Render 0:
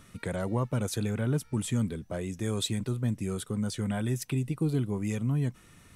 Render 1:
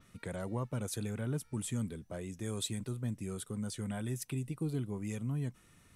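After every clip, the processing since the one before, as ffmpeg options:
-af "adynamicequalizer=threshold=0.00251:dfrequency=9800:dqfactor=1.1:tfrequency=9800:tqfactor=1.1:attack=5:release=100:ratio=0.375:range=3:mode=boostabove:tftype=bell,volume=-7.5dB"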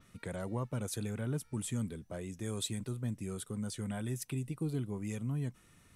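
-af anull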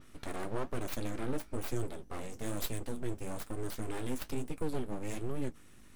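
-af "aeval=exprs='val(0)+0.00126*(sin(2*PI*50*n/s)+sin(2*PI*2*50*n/s)/2+sin(2*PI*3*50*n/s)/3+sin(2*PI*4*50*n/s)/4+sin(2*PI*5*50*n/s)/5)':c=same,aeval=exprs='abs(val(0))':c=same,flanger=delay=7.5:depth=8.4:regen=-53:speed=1.1:shape=sinusoidal,volume=7dB"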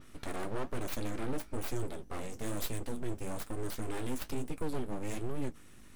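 -af "asoftclip=type=tanh:threshold=-25dB,volume=2dB"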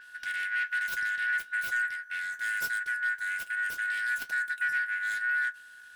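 -af "afftfilt=real='real(if(lt(b,272),68*(eq(floor(b/68),0)*3+eq(floor(b/68),1)*0+eq(floor(b/68),2)*1+eq(floor(b/68),3)*2)+mod(b,68),b),0)':imag='imag(if(lt(b,272),68*(eq(floor(b/68),0)*3+eq(floor(b/68),1)*0+eq(floor(b/68),2)*1+eq(floor(b/68),3)*2)+mod(b,68),b),0)':win_size=2048:overlap=0.75"

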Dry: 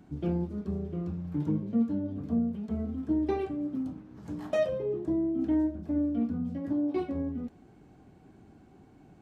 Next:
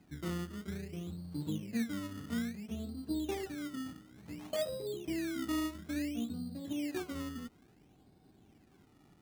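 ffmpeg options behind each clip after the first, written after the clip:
-af "acrusher=samples=19:mix=1:aa=0.000001:lfo=1:lforange=19:lforate=0.58,volume=-8dB"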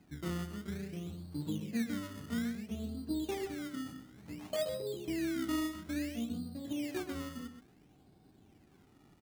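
-filter_complex "[0:a]asplit=2[a][b];[b]adelay=128.3,volume=-9dB,highshelf=f=4k:g=-2.89[c];[a][c]amix=inputs=2:normalize=0"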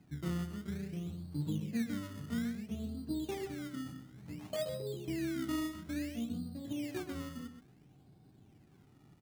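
-af "equalizer=f=130:w=1.7:g=9.5,volume=-2.5dB"

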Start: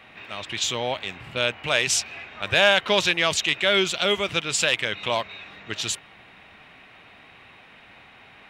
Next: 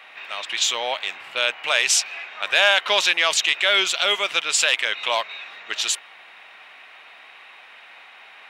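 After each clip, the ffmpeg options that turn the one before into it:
-filter_complex "[0:a]highpass=720,asplit=2[a][b];[b]alimiter=limit=-14dB:level=0:latency=1:release=27,volume=-2.5dB[c];[a][c]amix=inputs=2:normalize=0"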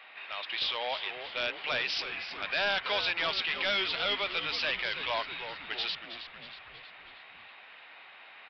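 -filter_complex "[0:a]aresample=11025,asoftclip=type=tanh:threshold=-18dB,aresample=44100,asplit=8[a][b][c][d][e][f][g][h];[b]adelay=319,afreqshift=-110,volume=-10.5dB[i];[c]adelay=638,afreqshift=-220,volume=-15.1dB[j];[d]adelay=957,afreqshift=-330,volume=-19.7dB[k];[e]adelay=1276,afreqshift=-440,volume=-24.2dB[l];[f]adelay=1595,afreqshift=-550,volume=-28.8dB[m];[g]adelay=1914,afreqshift=-660,volume=-33.4dB[n];[h]adelay=2233,afreqshift=-770,volume=-38dB[o];[a][i][j][k][l][m][n][o]amix=inputs=8:normalize=0,volume=-6.5dB"

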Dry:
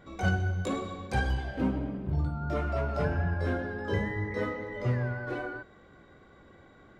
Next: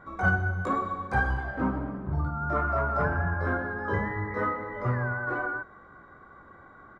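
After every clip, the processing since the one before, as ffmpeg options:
-af "firequalizer=gain_entry='entry(510,0);entry(1200,13);entry(2700,-10)':delay=0.05:min_phase=1"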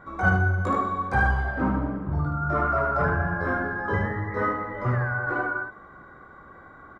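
-af "aecho=1:1:75:0.596,volume=2.5dB"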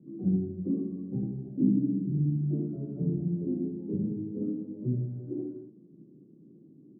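-af "asuperpass=centerf=220:order=8:qfactor=1,volume=2.5dB"

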